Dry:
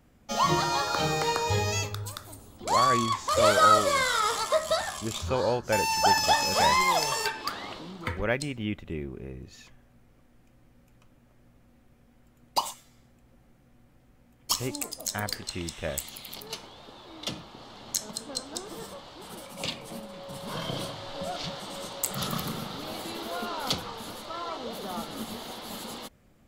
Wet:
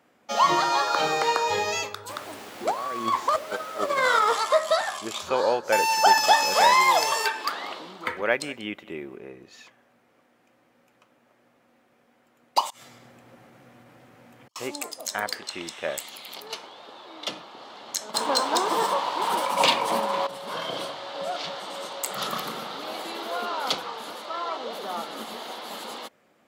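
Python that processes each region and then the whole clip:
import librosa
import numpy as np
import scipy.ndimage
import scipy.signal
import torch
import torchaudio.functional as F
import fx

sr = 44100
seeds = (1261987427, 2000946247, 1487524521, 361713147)

y = fx.tilt_shelf(x, sr, db=6.0, hz=1300.0, at=(2.08, 4.32), fade=0.02)
y = fx.over_compress(y, sr, threshold_db=-26.0, ratio=-0.5, at=(2.08, 4.32), fade=0.02)
y = fx.dmg_noise_colour(y, sr, seeds[0], colour='pink', level_db=-43.0, at=(2.08, 4.32), fade=0.02)
y = fx.chain(y, sr, fx.high_shelf(hz=10000.0, db=8.0),
    fx.echo_single(ms=189, db=-21.0), at=(5.19, 9.17))
y = fx.chain(y, sr, fx.over_compress(threshold_db=-57.0, ratio=-1.0),
    fx.peak_eq(hz=110.0, db=11.0, octaves=1.1), at=(12.7, 14.56))
y = fx.chain(y, sr, fx.peak_eq(hz=970.0, db=12.0, octaves=0.34),
    fx.leveller(passes=3), at=(18.14, 20.27))
y = scipy.signal.sosfilt(scipy.signal.bessel(2, 510.0, 'highpass', norm='mag', fs=sr, output='sos'), y)
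y = fx.high_shelf(y, sr, hz=4400.0, db=-10.0)
y = F.gain(torch.from_numpy(y), 6.5).numpy()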